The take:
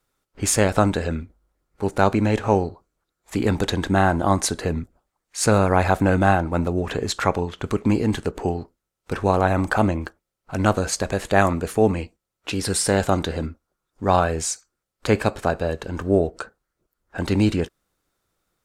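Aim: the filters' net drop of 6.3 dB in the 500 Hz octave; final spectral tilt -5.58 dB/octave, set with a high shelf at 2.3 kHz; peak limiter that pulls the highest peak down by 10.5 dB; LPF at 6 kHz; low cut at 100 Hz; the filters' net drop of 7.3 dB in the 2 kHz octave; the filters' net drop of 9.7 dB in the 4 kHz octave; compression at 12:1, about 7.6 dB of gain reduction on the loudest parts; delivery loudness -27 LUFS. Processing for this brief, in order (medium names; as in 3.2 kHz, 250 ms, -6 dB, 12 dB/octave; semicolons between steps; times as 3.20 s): high-pass 100 Hz; low-pass 6 kHz; peaking EQ 500 Hz -7.5 dB; peaking EQ 2 kHz -6.5 dB; treble shelf 2.3 kHz -5.5 dB; peaking EQ 4 kHz -4 dB; compression 12:1, threshold -23 dBFS; trim +7.5 dB; peak limiter -14 dBFS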